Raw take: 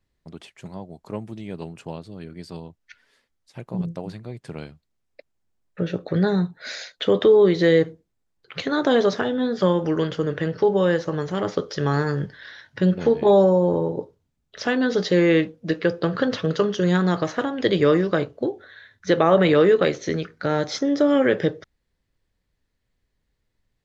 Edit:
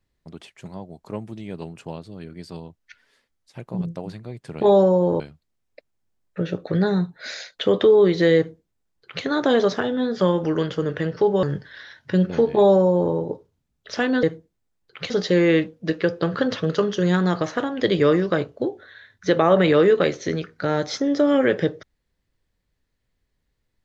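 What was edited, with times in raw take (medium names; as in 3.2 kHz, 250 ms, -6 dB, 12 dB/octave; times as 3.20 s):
7.78–8.65 s: copy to 14.91 s
10.84–12.11 s: delete
13.22–13.81 s: copy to 4.61 s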